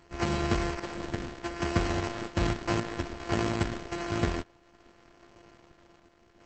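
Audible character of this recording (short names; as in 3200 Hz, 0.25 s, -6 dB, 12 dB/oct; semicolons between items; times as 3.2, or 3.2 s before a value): a buzz of ramps at a fixed pitch in blocks of 128 samples; random-step tremolo 2.5 Hz; aliases and images of a low sample rate 3600 Hz, jitter 0%; Opus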